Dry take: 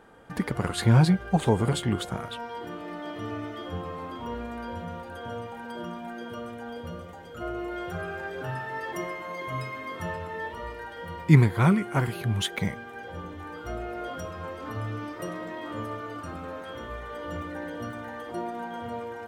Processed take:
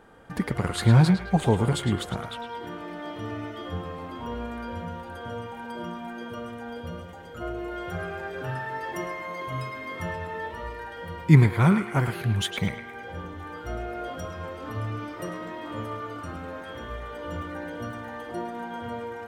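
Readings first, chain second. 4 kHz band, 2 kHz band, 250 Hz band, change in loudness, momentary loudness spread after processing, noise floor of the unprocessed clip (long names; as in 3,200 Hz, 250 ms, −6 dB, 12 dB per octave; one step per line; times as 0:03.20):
+0.5 dB, +1.0 dB, +1.0 dB, +1.5 dB, 16 LU, −41 dBFS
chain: low-shelf EQ 120 Hz +4 dB
feedback echo with a band-pass in the loop 107 ms, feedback 45%, band-pass 2,000 Hz, level −6 dB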